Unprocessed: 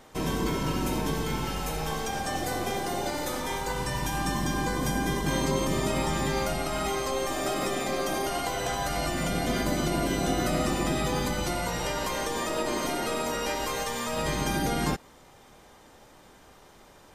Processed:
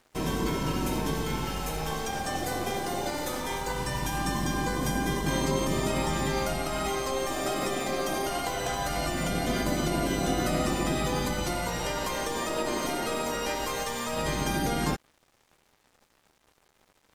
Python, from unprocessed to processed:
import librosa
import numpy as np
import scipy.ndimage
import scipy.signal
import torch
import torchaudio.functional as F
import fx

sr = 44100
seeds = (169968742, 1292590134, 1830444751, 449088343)

y = np.sign(x) * np.maximum(np.abs(x) - 10.0 ** (-50.5 / 20.0), 0.0)